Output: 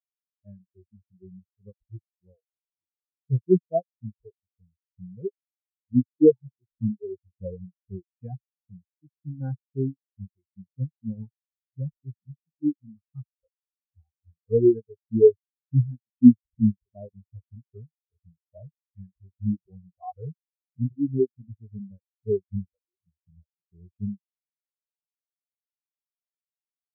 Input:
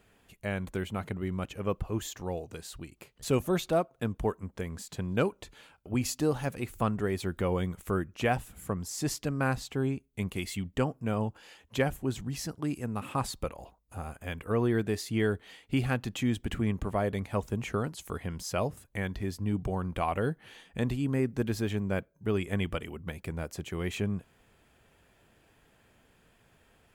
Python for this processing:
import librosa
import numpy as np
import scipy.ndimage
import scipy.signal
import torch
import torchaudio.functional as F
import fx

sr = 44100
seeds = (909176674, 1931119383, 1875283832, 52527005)

y = fx.hpss(x, sr, part='harmonic', gain_db=9)
y = fx.dereverb_blind(y, sr, rt60_s=0.87)
y = fx.spectral_expand(y, sr, expansion=4.0)
y = y * 10.0 ** (7.0 / 20.0)